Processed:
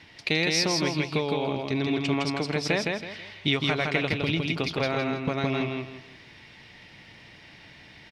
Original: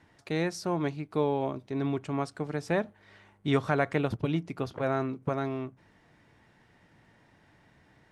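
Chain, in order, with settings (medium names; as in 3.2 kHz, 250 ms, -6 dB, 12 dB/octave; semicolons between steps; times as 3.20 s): compression 10:1, threshold -30 dBFS, peak gain reduction 11 dB; high-order bell 3.4 kHz +13 dB; on a send: feedback delay 162 ms, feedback 30%, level -3 dB; on the sum: trim +6 dB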